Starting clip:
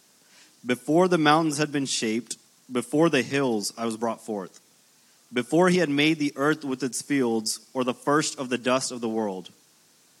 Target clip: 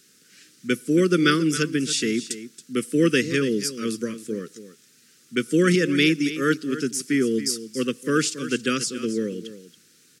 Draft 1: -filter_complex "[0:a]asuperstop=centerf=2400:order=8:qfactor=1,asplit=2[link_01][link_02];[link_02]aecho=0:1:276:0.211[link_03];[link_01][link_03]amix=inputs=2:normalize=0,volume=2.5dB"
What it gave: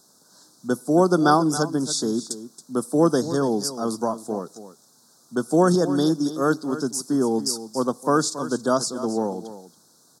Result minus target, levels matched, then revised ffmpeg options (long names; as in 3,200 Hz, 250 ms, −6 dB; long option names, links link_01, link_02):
1,000 Hz band +8.5 dB
-filter_complex "[0:a]asuperstop=centerf=800:order=8:qfactor=1,asplit=2[link_01][link_02];[link_02]aecho=0:1:276:0.211[link_03];[link_01][link_03]amix=inputs=2:normalize=0,volume=2.5dB"